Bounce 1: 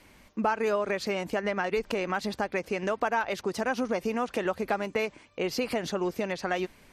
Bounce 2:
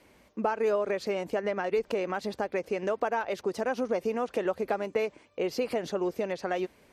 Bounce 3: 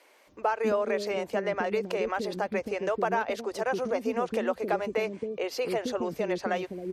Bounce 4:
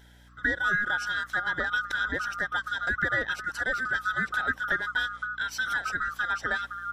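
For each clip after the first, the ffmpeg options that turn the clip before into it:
-af "highpass=43,equalizer=f=480:w=1:g=7.5,volume=-5.5dB"
-filter_complex "[0:a]acrossover=split=390[a][b];[a]adelay=270[c];[c][b]amix=inputs=2:normalize=0,volume=2.5dB"
-af "afftfilt=real='real(if(lt(b,960),b+48*(1-2*mod(floor(b/48),2)),b),0)':imag='imag(if(lt(b,960),b+48*(1-2*mod(floor(b/48),2)),b),0)':win_size=2048:overlap=0.75,aeval=exprs='val(0)+0.002*(sin(2*PI*60*n/s)+sin(2*PI*2*60*n/s)/2+sin(2*PI*3*60*n/s)/3+sin(2*PI*4*60*n/s)/4+sin(2*PI*5*60*n/s)/5)':c=same"

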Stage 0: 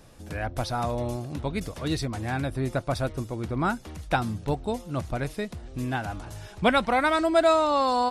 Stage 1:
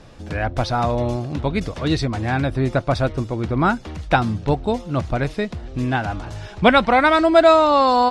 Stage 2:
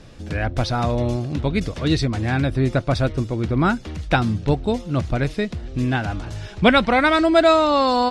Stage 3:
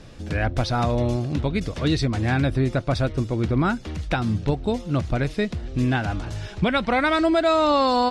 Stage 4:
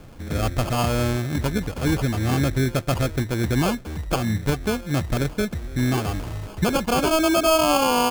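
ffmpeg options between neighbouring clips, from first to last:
-af "lowpass=5.2k,volume=8dB"
-af "equalizer=f=880:t=o:w=1.4:g=-6,volume=1.5dB"
-af "alimiter=limit=-11.5dB:level=0:latency=1:release=209"
-af "acrusher=samples=23:mix=1:aa=0.000001"

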